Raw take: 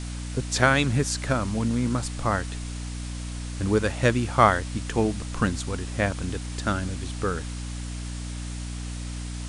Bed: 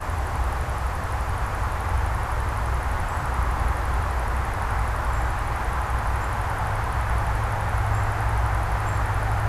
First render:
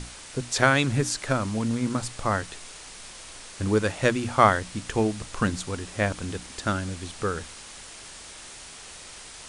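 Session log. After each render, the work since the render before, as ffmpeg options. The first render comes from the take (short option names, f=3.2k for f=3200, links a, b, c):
-af "bandreject=f=60:t=h:w=6,bandreject=f=120:t=h:w=6,bandreject=f=180:t=h:w=6,bandreject=f=240:t=h:w=6,bandreject=f=300:t=h:w=6"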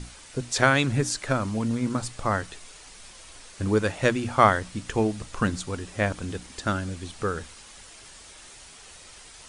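-af "afftdn=nr=6:nf=-44"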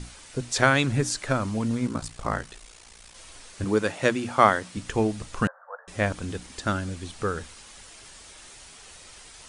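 -filter_complex "[0:a]asplit=3[a][b][c];[a]afade=t=out:st=1.86:d=0.02[d];[b]aeval=exprs='val(0)*sin(2*PI*29*n/s)':c=same,afade=t=in:st=1.86:d=0.02,afade=t=out:st=3.14:d=0.02[e];[c]afade=t=in:st=3.14:d=0.02[f];[d][e][f]amix=inputs=3:normalize=0,asettb=1/sr,asplit=3[g][h][i];[g]atrim=end=3.644[j];[h]atrim=start=3.64:end=4.77,asetpts=PTS-STARTPTS,afade=t=in:d=0.004:c=qsin,afade=t=out:st=1.126:d=0.004:c=qsin,highpass=150[k];[i]atrim=start=4.766[l];[j][k]acrossfade=d=0.004:c1=hsin:c2=qsin[m];[m][l]acrossfade=d=0.004:c1=qsin:c2=hsin,asettb=1/sr,asplit=3[n][o][p];[n]atrim=end=5.474[q];[o]atrim=start=5.47:end=5.88,asetpts=PTS-STARTPTS,afade=t=in:d=0.004:c=qsin,afade=t=out:st=0.406:d=0.004:c=qsin,asuperpass=centerf=930:order=20:qfactor=0.79[r];[p]atrim=start=5.876[s];[q][r]acrossfade=d=0.004:c1=hsin:c2=qsin[t];[t][s]acrossfade=d=0.004:c1=qsin:c2=hsin"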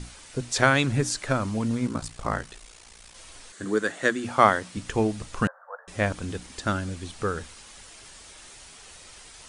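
-filter_complex "[0:a]asettb=1/sr,asplit=3[a][b][c];[a]atrim=end=3.524[d];[b]atrim=start=3.52:end=4.24,asetpts=PTS-STARTPTS,afade=t=in:d=0.004:c=qsin,afade=t=out:st=0.716:d=0.004:c=qsin,highpass=220,equalizer=f=570:t=q:w=4:g=-5,equalizer=f=890:t=q:w=4:g=-9,equalizer=f=1.7k:t=q:w=4:g=6,equalizer=f=2.5k:t=q:w=4:g=-9,equalizer=f=5.2k:t=q:w=4:g=-6,equalizer=f=7.6k:t=q:w=4:g=3,lowpass=f=9.7k:w=0.5412,lowpass=f=9.7k:w=1.3066[e];[c]atrim=start=4.236[f];[d][e]acrossfade=d=0.004:c1=hsin:c2=qsin[g];[g][f]acrossfade=d=0.004:c1=qsin:c2=hsin"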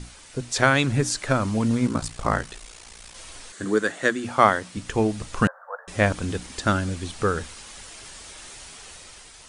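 -af "dynaudnorm=f=150:g=9:m=5dB"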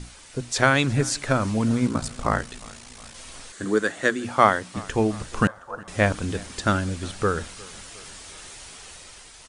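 -af "aecho=1:1:359|718|1077|1436:0.075|0.0435|0.0252|0.0146"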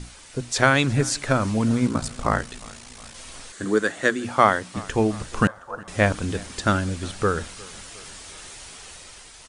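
-af "volume=1dB,alimiter=limit=-2dB:level=0:latency=1"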